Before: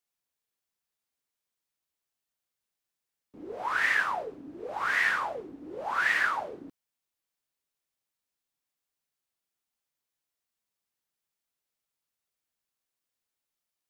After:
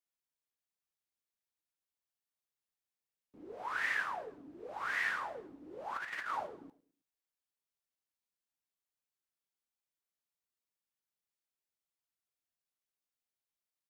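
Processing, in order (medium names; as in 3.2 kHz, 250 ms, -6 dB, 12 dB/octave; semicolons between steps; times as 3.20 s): 5.96–6.47 s: compressor with a negative ratio -30 dBFS, ratio -0.5; on a send: feedback delay 107 ms, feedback 39%, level -20 dB; on the sum: trim -8.5 dB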